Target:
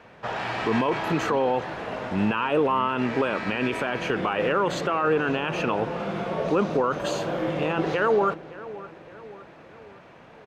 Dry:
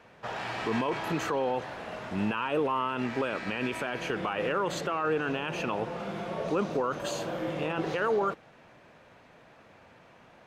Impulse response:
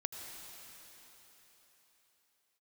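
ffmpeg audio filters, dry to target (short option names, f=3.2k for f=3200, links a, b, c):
-filter_complex "[0:a]highshelf=f=6.7k:g=-9.5,asplit=2[a][b];[b]adelay=565,lowpass=f=2k:p=1,volume=-16.5dB,asplit=2[c][d];[d]adelay=565,lowpass=f=2k:p=1,volume=0.54,asplit=2[e][f];[f]adelay=565,lowpass=f=2k:p=1,volume=0.54,asplit=2[g][h];[h]adelay=565,lowpass=f=2k:p=1,volume=0.54,asplit=2[i][j];[j]adelay=565,lowpass=f=2k:p=1,volume=0.54[k];[c][e][g][i][k]amix=inputs=5:normalize=0[l];[a][l]amix=inputs=2:normalize=0,volume=6dB"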